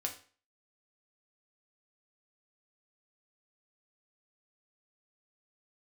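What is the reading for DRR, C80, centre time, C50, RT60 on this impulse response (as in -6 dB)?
1.5 dB, 15.5 dB, 14 ms, 10.5 dB, 0.40 s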